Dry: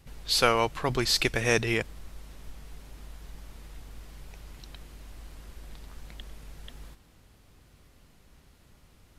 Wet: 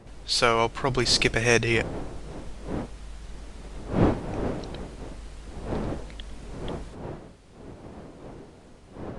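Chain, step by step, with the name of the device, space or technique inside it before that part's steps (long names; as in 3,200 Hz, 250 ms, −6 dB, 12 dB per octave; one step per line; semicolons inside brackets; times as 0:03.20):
smartphone video outdoors (wind on the microphone 440 Hz −38 dBFS; automatic gain control gain up to 4 dB; AAC 96 kbit/s 22,050 Hz)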